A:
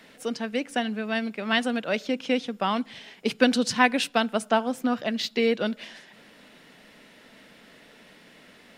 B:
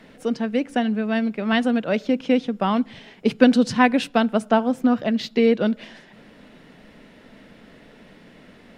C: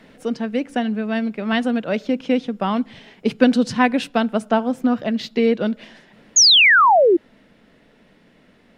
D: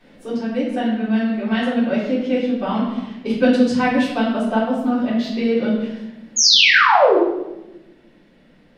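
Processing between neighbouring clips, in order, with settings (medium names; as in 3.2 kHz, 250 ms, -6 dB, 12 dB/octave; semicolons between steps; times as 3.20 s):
tilt EQ -2.5 dB/octave; trim +2.5 dB
painted sound fall, 6.36–7.17 s, 320–6900 Hz -8 dBFS; gain riding within 3 dB 2 s; trim -3 dB
reverberation RT60 1.0 s, pre-delay 3 ms, DRR -10 dB; trim -11 dB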